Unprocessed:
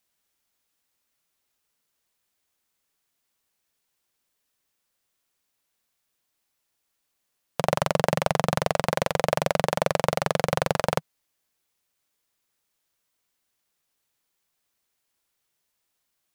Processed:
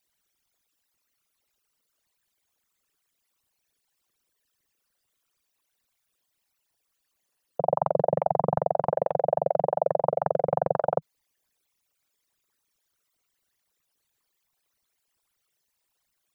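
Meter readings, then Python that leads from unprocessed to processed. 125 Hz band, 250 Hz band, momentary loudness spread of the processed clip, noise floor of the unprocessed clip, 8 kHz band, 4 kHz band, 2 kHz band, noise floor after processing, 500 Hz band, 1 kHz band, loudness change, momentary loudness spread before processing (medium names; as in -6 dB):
-6.0 dB, -6.0 dB, 3 LU, -78 dBFS, under -30 dB, under -30 dB, -17.5 dB, -78 dBFS, +1.5 dB, +0.5 dB, -0.5 dB, 3 LU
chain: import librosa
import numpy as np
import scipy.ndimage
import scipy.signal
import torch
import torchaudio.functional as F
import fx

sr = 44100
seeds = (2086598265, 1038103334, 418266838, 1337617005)

y = fx.envelope_sharpen(x, sr, power=3.0)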